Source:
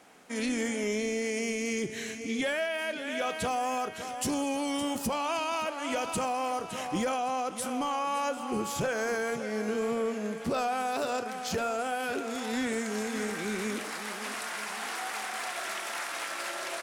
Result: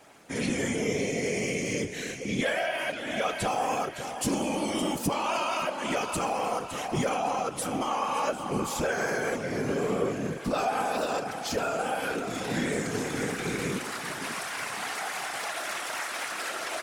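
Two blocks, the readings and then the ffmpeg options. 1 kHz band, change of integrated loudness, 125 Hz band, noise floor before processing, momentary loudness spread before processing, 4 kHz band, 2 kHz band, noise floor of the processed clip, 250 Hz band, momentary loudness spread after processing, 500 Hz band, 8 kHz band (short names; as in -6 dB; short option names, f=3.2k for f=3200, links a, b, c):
+2.0 dB, +2.0 dB, +8.0 dB, -39 dBFS, 4 LU, +2.0 dB, +2.0 dB, -37 dBFS, +1.5 dB, 4 LU, +2.0 dB, +2.0 dB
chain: -af "afftfilt=real='hypot(re,im)*cos(2*PI*random(0))':imag='hypot(re,im)*sin(2*PI*random(1))':win_size=512:overlap=0.75,volume=8dB"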